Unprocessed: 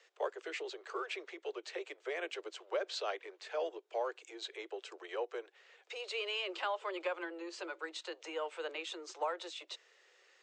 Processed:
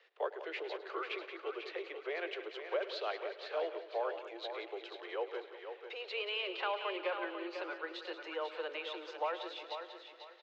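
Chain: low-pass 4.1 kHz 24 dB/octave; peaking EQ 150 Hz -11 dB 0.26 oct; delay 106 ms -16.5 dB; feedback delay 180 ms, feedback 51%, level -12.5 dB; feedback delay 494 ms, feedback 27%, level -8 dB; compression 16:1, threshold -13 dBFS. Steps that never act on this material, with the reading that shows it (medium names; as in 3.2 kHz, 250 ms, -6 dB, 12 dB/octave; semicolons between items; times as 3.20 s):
peaking EQ 150 Hz: input has nothing below 290 Hz; compression, threshold -13 dBFS: peak at its input -23.5 dBFS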